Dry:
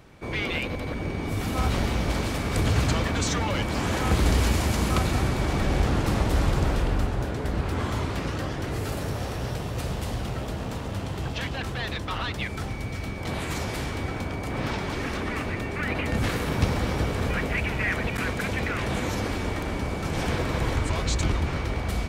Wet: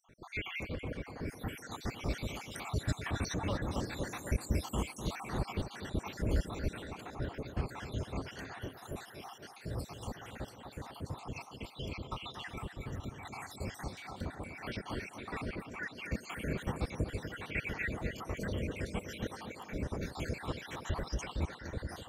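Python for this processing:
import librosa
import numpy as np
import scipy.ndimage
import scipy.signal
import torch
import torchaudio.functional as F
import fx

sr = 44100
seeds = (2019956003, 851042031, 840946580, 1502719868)

y = fx.spec_dropout(x, sr, seeds[0], share_pct=73)
y = fx.echo_tape(y, sr, ms=250, feedback_pct=78, wet_db=-7.0, lp_hz=1800.0, drive_db=10.0, wow_cents=36)
y = F.gain(torch.from_numpy(y), -7.0).numpy()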